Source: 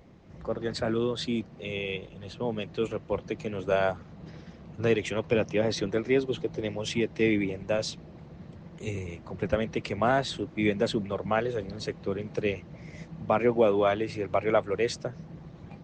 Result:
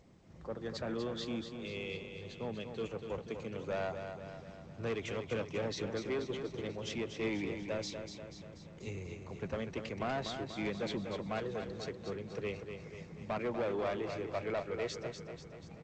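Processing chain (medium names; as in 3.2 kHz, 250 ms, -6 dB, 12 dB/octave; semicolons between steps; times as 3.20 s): saturation -22.5 dBFS, distortion -11 dB; on a send: feedback delay 243 ms, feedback 55%, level -7.5 dB; on the sum: trim -8 dB; G.722 64 kbps 16 kHz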